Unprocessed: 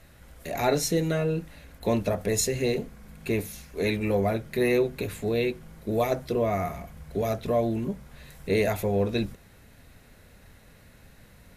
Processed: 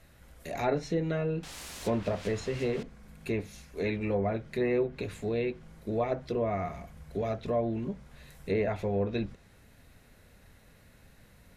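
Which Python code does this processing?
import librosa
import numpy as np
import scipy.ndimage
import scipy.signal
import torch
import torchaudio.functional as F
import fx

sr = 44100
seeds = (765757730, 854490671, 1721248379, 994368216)

y = fx.quant_dither(x, sr, seeds[0], bits=6, dither='triangular', at=(1.43, 2.83))
y = fx.env_lowpass_down(y, sr, base_hz=2000.0, full_db=-20.0)
y = F.gain(torch.from_numpy(y), -4.5).numpy()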